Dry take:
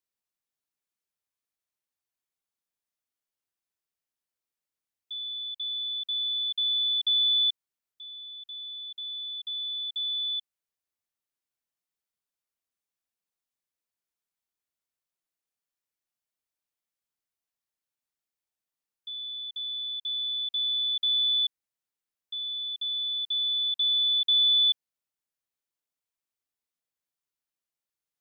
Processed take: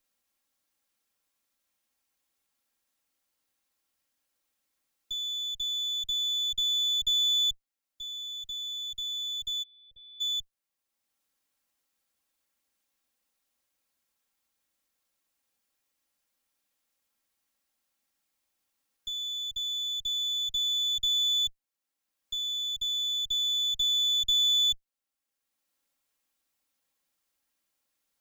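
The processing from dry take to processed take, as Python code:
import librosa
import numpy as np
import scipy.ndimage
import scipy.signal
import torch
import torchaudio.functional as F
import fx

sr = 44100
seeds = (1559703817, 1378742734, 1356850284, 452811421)

y = fx.lower_of_two(x, sr, delay_ms=3.7)
y = fx.formant_cascade(y, sr, vowel='e', at=(9.62, 10.2), fade=0.02)
y = fx.band_squash(y, sr, depth_pct=40)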